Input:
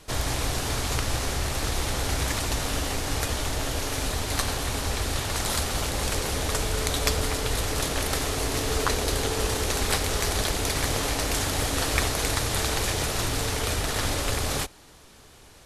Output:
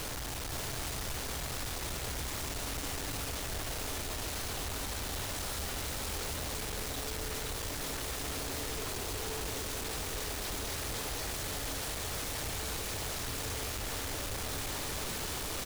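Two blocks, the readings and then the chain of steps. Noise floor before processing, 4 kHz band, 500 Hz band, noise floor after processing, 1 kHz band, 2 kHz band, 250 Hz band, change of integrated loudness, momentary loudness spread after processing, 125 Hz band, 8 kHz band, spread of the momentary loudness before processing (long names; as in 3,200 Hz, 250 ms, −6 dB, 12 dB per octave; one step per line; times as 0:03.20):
−51 dBFS, −9.5 dB, −11.0 dB, −38 dBFS, −10.5 dB, −10.0 dB, −10.5 dB, −9.5 dB, 1 LU, −12.0 dB, −8.5 dB, 3 LU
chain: sign of each sample alone
brickwall limiter −30 dBFS, peak gain reduction 3.5 dB
single-tap delay 518 ms −4 dB
level −8.5 dB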